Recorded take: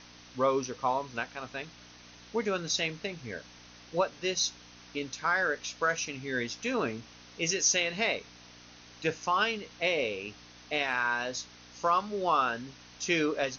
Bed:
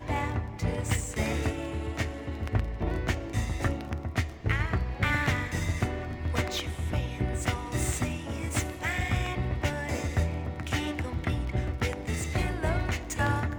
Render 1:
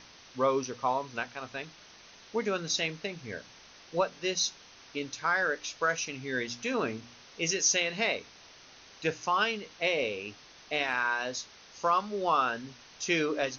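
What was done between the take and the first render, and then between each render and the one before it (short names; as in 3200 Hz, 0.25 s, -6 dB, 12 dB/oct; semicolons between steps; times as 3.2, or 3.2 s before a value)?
de-hum 60 Hz, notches 5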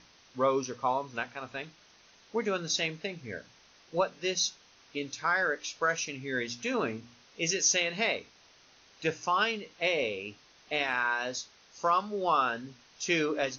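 noise print and reduce 6 dB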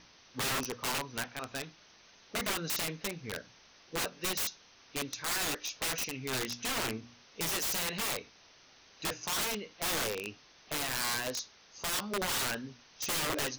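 wrapped overs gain 27.5 dB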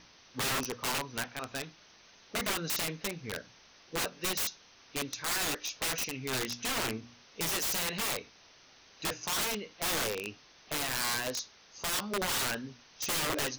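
gain +1 dB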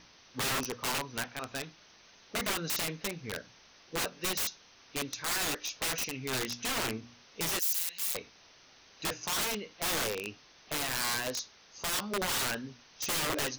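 7.59–8.15 pre-emphasis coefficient 0.97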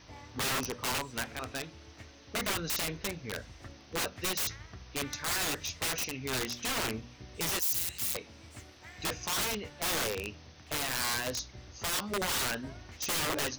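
add bed -20 dB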